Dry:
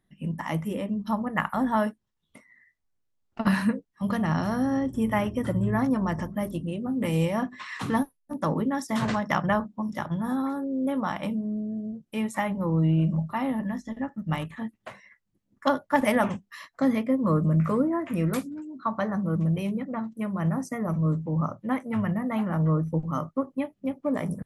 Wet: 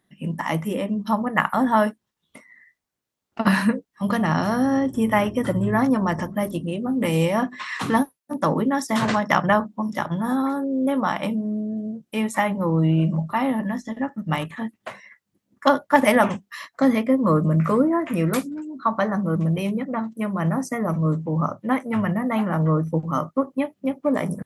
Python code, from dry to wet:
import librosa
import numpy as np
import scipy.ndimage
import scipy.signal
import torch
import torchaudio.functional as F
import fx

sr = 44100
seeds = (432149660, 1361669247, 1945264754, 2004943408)

y = fx.highpass(x, sr, hz=210.0, slope=6)
y = F.gain(torch.from_numpy(y), 7.0).numpy()